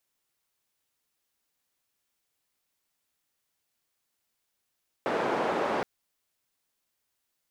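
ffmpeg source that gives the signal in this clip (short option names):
-f lavfi -i "anoisesrc=c=white:d=0.77:r=44100:seed=1,highpass=f=290,lowpass=f=810,volume=-8dB"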